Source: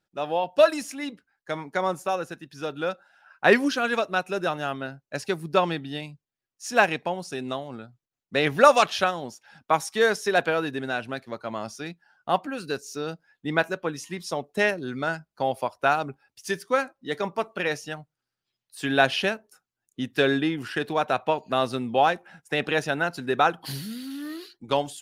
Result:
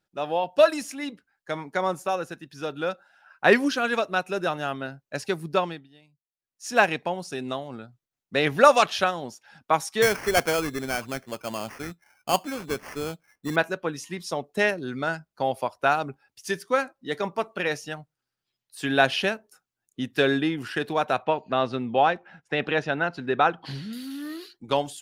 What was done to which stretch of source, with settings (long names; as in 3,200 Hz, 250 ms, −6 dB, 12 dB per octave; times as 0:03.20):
0:05.48–0:06.71: duck −21.5 dB, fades 0.40 s
0:10.02–0:13.56: sample-rate reduction 3,800 Hz
0:21.22–0:23.93: low-pass filter 3,700 Hz